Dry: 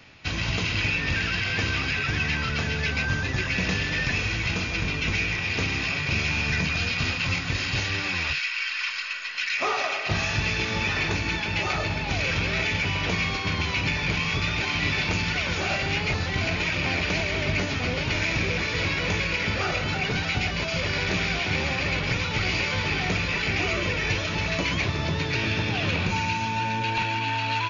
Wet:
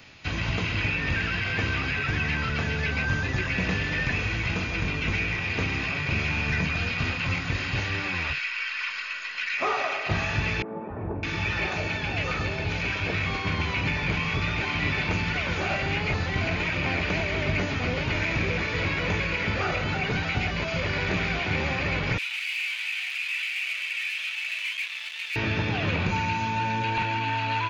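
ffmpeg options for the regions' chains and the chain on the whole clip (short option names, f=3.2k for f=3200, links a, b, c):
-filter_complex "[0:a]asettb=1/sr,asplit=3[a][b][c];[a]atrim=end=10.624[d];[b]atrim=start=10.62:end=13.26,asetpts=PTS-STARTPTS,afade=t=in:d=0.004:c=qsin,afade=t=out:st=2.636:d=0.004:c=qsin,highpass=52,bandreject=f=2k:w=21,acrossover=split=190|950[e][f][g];[e]adelay=280[h];[g]adelay=610[i];[h][f][i]amix=inputs=3:normalize=0,atrim=end_sample=116424[j];[c]atrim=start=13.256[k];[d][j]acrossfade=d=0.004:c1=hsin:c2=qsin[l];[l][k]acrossfade=d=0.004:c1=qsin:c2=hsin,asettb=1/sr,asplit=3[m][n][o];[m]atrim=end=22.184[p];[n]atrim=start=22.18:end=25.36,asetpts=PTS-STARTPTS,afade=t=in:d=0.004:c=qsin,afade=t=out:st=3.176:d=0.004:c=qsin,asoftclip=type=hard:threshold=-30.5dB,highpass=f=2.6k:t=q:w=3.1[q];[o]atrim=start=25.356[r];[p][q]acrossfade=d=0.004:c1=hsin:c2=qsin[s];[s][r]acrossfade=d=0.004:c1=qsin:c2=hsin,bandreject=f=5.5k:w=22,acrossover=split=2700[t][u];[u]acompressor=threshold=-45dB:ratio=4:attack=1:release=60[v];[t][v]amix=inputs=2:normalize=0,highshelf=f=4.6k:g=6"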